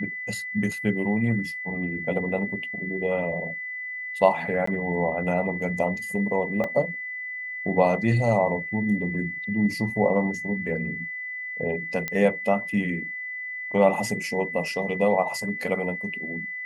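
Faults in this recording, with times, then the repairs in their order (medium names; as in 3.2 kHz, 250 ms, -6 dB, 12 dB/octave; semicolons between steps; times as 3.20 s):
whine 2 kHz -31 dBFS
4.66–4.67 s: dropout 14 ms
6.64 s: dropout 2.9 ms
12.08 s: pop -13 dBFS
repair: de-click; band-stop 2 kHz, Q 30; interpolate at 4.66 s, 14 ms; interpolate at 6.64 s, 2.9 ms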